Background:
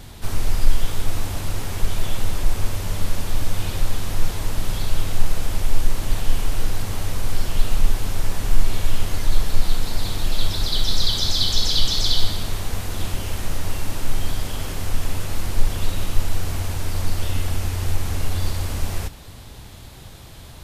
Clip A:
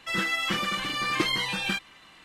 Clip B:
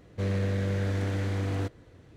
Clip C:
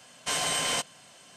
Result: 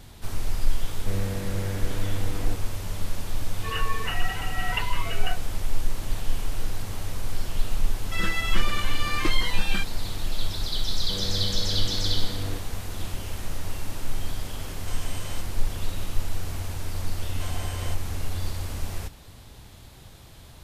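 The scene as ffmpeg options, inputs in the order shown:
-filter_complex "[2:a]asplit=2[s0][s1];[1:a]asplit=2[s2][s3];[3:a]asplit=2[s4][s5];[0:a]volume=0.473[s6];[s2]lowpass=f=2600:t=q:w=0.5098,lowpass=f=2600:t=q:w=0.6013,lowpass=f=2600:t=q:w=0.9,lowpass=f=2600:t=q:w=2.563,afreqshift=-3100[s7];[s5]highshelf=f=2100:g=-10[s8];[s0]atrim=end=2.16,asetpts=PTS-STARTPTS,volume=0.708,afade=t=in:d=0.004:c=hsin,afade=t=out:st=2.156:d=0.004:c=hsin,adelay=880[s9];[s7]atrim=end=2.24,asetpts=PTS-STARTPTS,volume=0.708,afade=t=in:d=0.004:c=hsin,afade=t=out:st=2.236:d=0.004:c=hsin,adelay=157437S[s10];[s3]atrim=end=2.24,asetpts=PTS-STARTPTS,volume=0.794,afade=t=in:d=0.004:c=hsin,afade=t=out:st=2.236:d=0.004:c=hsin,adelay=8050[s11];[s1]atrim=end=2.16,asetpts=PTS-STARTPTS,volume=0.596,afade=t=in:d=0.004:c=hsin,afade=t=out:st=2.156:d=0.004:c=hsin,adelay=10910[s12];[s4]atrim=end=1.36,asetpts=PTS-STARTPTS,volume=0.188,afade=t=in:d=0.004:c=hsin,afade=t=out:st=1.356:d=0.004:c=hsin,adelay=643860S[s13];[s8]atrim=end=1.36,asetpts=PTS-STARTPTS,volume=0.447,afade=t=in:d=0.004:c=hsin,afade=t=out:st=1.356:d=0.004:c=hsin,adelay=17130[s14];[s6][s9][s10][s11][s12][s13][s14]amix=inputs=7:normalize=0"

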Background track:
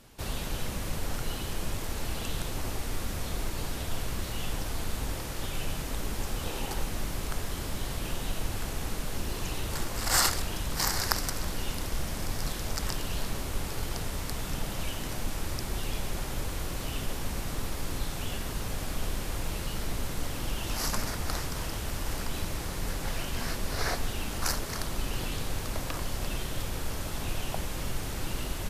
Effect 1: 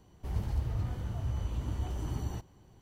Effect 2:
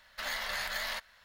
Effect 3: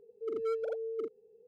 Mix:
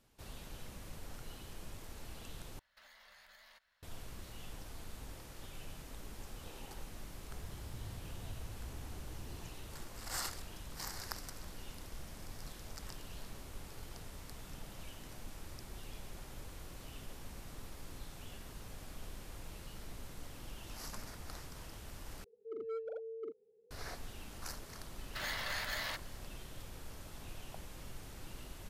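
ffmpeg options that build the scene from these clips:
-filter_complex "[2:a]asplit=2[s0][s1];[0:a]volume=0.168[s2];[s0]acompressor=threshold=0.00891:ratio=6:attack=3.2:release=140:knee=1:detection=peak[s3];[1:a]alimiter=level_in=1.78:limit=0.0631:level=0:latency=1:release=71,volume=0.562[s4];[3:a]highshelf=f=4000:g=-11.5[s5];[s2]asplit=3[s6][s7][s8];[s6]atrim=end=2.594[s9];[s3]atrim=end=1.24,asetpts=PTS-STARTPTS,volume=0.15[s10];[s7]atrim=start=3.826:end=22.244[s11];[s5]atrim=end=1.47,asetpts=PTS-STARTPTS,volume=0.422[s12];[s8]atrim=start=23.706[s13];[s4]atrim=end=2.81,asetpts=PTS-STARTPTS,volume=0.251,afade=t=in:d=0.004:c=hsin,afade=t=out:st=2.806:d=0.004:c=hsin,adelay=7080[s14];[s1]atrim=end=1.24,asetpts=PTS-STARTPTS,volume=0.631,afade=t=in:d=0.004:c=hsin,afade=t=out:st=1.236:d=0.004:c=hsin,adelay=24970[s15];[s9][s10]acrossfade=d=0.004:c1=hsin:c2=hsin[s16];[s16][s11]acrossfade=d=0.004:c1=hsin:c2=hsin[s17];[s17][s12]acrossfade=d=0.004:c1=hsin:c2=hsin[s18];[s18][s13]acrossfade=d=0.004:c1=hsin:c2=hsin[s19];[s19][s14][s15]amix=inputs=3:normalize=0"

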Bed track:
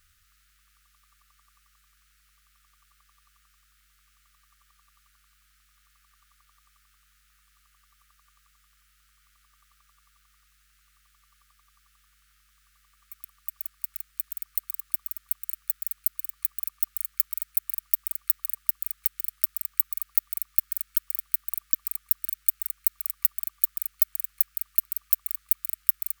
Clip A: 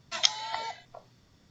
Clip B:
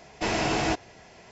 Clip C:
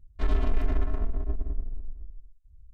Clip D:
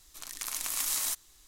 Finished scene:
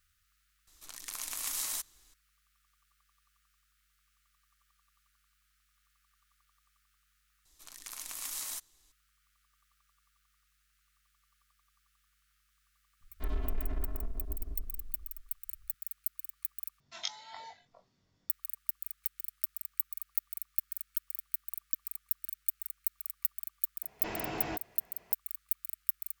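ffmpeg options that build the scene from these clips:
-filter_complex "[4:a]asplit=2[s0][s1];[0:a]volume=0.335[s2];[1:a]asplit=2[s3][s4];[s4]adelay=21,volume=0.668[s5];[s3][s5]amix=inputs=2:normalize=0[s6];[2:a]bass=f=250:g=-1,treble=f=4000:g=-8[s7];[s2]asplit=3[s8][s9][s10];[s8]atrim=end=7.454[s11];[s1]atrim=end=1.47,asetpts=PTS-STARTPTS,volume=0.398[s12];[s9]atrim=start=8.916:end=16.804[s13];[s6]atrim=end=1.5,asetpts=PTS-STARTPTS,volume=0.188[s14];[s10]atrim=start=18.296[s15];[s0]atrim=end=1.47,asetpts=PTS-STARTPTS,volume=0.596,afade=t=in:d=0.004:c=hsin,afade=t=out:st=1.466:d=0.004:c=hsin,adelay=670[s16];[3:a]atrim=end=2.73,asetpts=PTS-STARTPTS,volume=0.335,afade=t=in:d=0.004:c=hsin,afade=t=out:st=2.726:d=0.004:c=hsin,adelay=13010[s17];[s7]atrim=end=1.31,asetpts=PTS-STARTPTS,volume=0.251,afade=t=in:d=0.004:c=hsin,afade=t=out:st=1.306:d=0.004:c=hsin,adelay=23820[s18];[s11][s12]acrossfade=d=0.004:c1=hsin:c2=hsin[s19];[s19][s13]acrossfade=d=0.004:c1=hsin:c2=hsin[s20];[s20][s14]acrossfade=d=0.004:c1=hsin:c2=hsin[s21];[s21][s15]acrossfade=d=0.004:c1=hsin:c2=hsin[s22];[s22][s16][s17][s18]amix=inputs=4:normalize=0"

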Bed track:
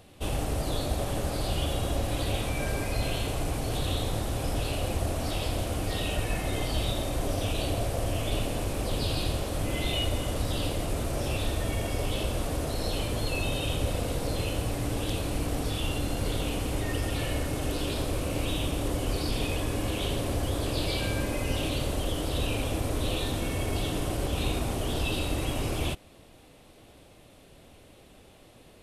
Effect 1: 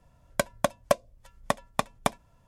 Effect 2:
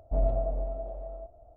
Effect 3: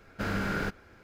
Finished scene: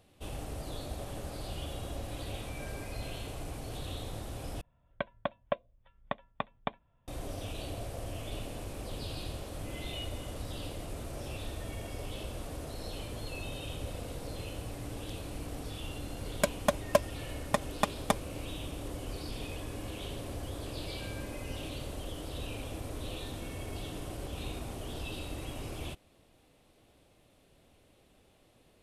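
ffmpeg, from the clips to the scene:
-filter_complex "[1:a]asplit=2[s0][s1];[0:a]volume=0.299[s2];[s0]aresample=8000,aresample=44100[s3];[s1]aecho=1:1:4.9:0.65[s4];[s2]asplit=2[s5][s6];[s5]atrim=end=4.614[s7];[s3]atrim=end=2.47,asetpts=PTS-STARTPTS,volume=0.355[s8];[s6]atrim=start=7.076[s9];[s4]atrim=end=2.47,asetpts=PTS-STARTPTS,volume=0.631,afade=t=in:d=0.004:c=hsin,afade=t=out:st=2.466:d=0.004:c=hsin,adelay=707364S[s10];[s7][s8]acrossfade=d=0.004:c1=hsin:c2=hsin[s11];[s11][s9]acrossfade=d=0.004:c1=hsin:c2=hsin[s12];[s12][s10]amix=inputs=2:normalize=0"

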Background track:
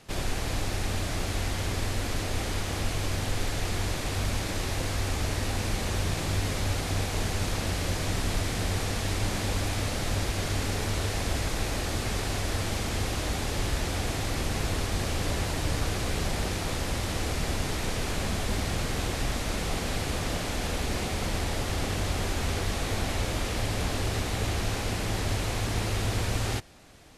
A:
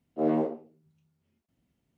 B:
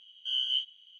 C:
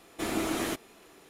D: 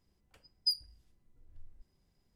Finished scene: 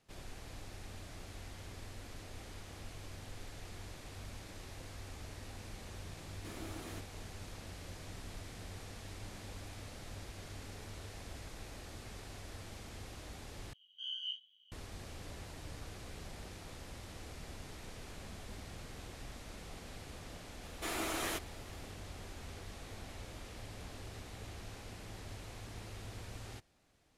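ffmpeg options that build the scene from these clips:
-filter_complex "[3:a]asplit=2[s0][s1];[0:a]volume=0.112[s2];[2:a]flanger=delay=19.5:depth=3.1:speed=2.3[s3];[s1]equalizer=f=190:w=0.71:g=-14[s4];[s2]asplit=2[s5][s6];[s5]atrim=end=13.734[s7];[s3]atrim=end=0.99,asetpts=PTS-STARTPTS,volume=0.376[s8];[s6]atrim=start=14.716[s9];[s0]atrim=end=1.29,asetpts=PTS-STARTPTS,volume=0.133,afade=t=in:d=0.004:c=hsin,afade=t=out:st=1.286:d=0.004:c=hsin,adelay=6250[s10];[s4]atrim=end=1.29,asetpts=PTS-STARTPTS,volume=0.708,afade=t=in:d=0.004:c=hsin,afade=t=out:st=1.286:d=0.004:c=hsin,adelay=20630[s11];[s7][s8]acrossfade=d=0.004:c1=hsin:c2=hsin[s12];[s12][s9]acrossfade=d=0.004:c1=hsin:c2=hsin[s13];[s13][s10][s11]amix=inputs=3:normalize=0"

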